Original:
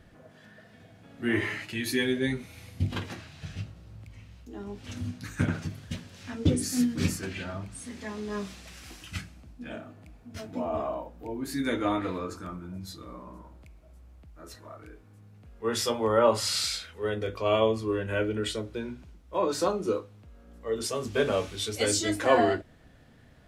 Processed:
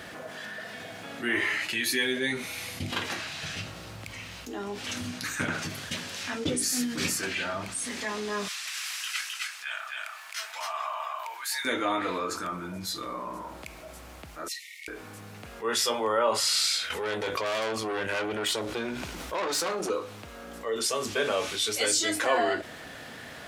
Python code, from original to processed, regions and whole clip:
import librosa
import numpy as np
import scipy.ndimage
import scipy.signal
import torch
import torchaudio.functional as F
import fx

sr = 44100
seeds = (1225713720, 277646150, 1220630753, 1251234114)

y = fx.chain(x, sr, fx.highpass(hz=1100.0, slope=24),
    fx.echo_single(ms=262, db=-3.5), at=(8.48, 11.65))
y = fx.chain(y, sr, fx.brickwall_highpass(low_hz=1800.0),
    fx.high_shelf(hz=12000.0, db=-5.0), at=(14.48, 14.88))
y = fx.chain(y, sr, fx.tube_stage(drive_db=30.0, bias=0.6),
    fx.env_flatten(amount_pct=70), at=(16.9, 19.9))
y = fx.highpass(y, sr, hz=890.0, slope=6)
y = fx.env_flatten(y, sr, amount_pct=50)